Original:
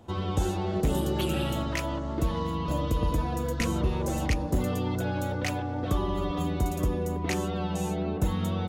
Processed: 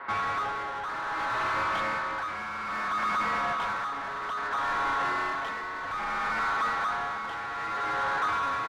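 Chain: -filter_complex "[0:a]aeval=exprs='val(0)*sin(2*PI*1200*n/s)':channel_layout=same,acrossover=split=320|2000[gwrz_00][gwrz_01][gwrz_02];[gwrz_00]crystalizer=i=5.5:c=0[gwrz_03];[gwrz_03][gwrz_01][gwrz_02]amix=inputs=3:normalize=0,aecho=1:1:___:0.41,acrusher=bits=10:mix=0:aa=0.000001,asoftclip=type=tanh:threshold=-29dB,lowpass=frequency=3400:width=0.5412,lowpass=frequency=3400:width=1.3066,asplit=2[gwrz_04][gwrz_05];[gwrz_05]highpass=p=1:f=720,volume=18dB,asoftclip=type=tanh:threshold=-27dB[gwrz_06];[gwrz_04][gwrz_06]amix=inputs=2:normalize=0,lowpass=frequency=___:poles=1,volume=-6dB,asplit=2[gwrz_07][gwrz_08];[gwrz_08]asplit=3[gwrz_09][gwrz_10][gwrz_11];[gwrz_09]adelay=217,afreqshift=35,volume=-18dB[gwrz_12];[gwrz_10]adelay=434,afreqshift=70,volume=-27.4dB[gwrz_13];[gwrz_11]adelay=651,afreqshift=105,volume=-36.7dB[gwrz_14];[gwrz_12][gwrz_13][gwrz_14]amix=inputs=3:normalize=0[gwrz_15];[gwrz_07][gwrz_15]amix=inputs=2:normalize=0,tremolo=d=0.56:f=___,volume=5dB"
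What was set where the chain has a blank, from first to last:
7.3, 1900, 0.61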